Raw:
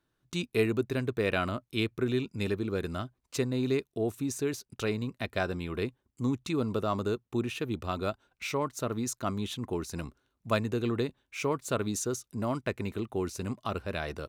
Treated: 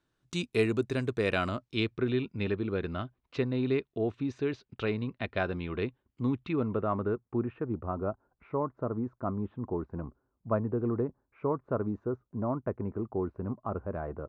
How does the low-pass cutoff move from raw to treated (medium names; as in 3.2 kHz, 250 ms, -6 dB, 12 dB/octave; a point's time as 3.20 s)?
low-pass 24 dB/octave
1.36 s 9.3 kHz
2.21 s 3.5 kHz
6.34 s 3.5 kHz
6.75 s 2.1 kHz
7.97 s 1.2 kHz